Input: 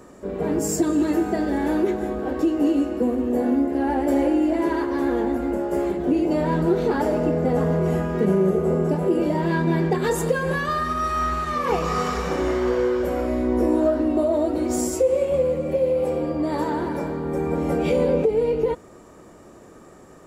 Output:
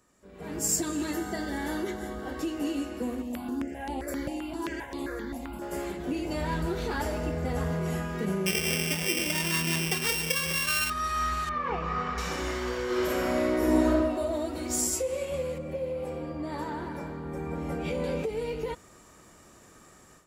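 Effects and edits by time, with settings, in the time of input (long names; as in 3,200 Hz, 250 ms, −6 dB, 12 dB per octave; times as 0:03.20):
0:01.11–0:02.39: Butterworth band-reject 2,500 Hz, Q 5.9
0:03.22–0:05.62: step-sequenced phaser 7.6 Hz 390–5,700 Hz
0:06.21–0:07.71: low shelf with overshoot 120 Hz +7 dB, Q 1.5
0:08.46–0:10.90: samples sorted by size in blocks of 16 samples
0:11.49–0:12.18: low-pass filter 1,800 Hz
0:12.85–0:13.88: thrown reverb, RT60 1.6 s, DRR −6 dB
0:15.58–0:18.04: high-shelf EQ 2,300 Hz −11 dB
whole clip: guitar amp tone stack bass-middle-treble 5-5-5; automatic gain control gain up to 14 dB; level −5.5 dB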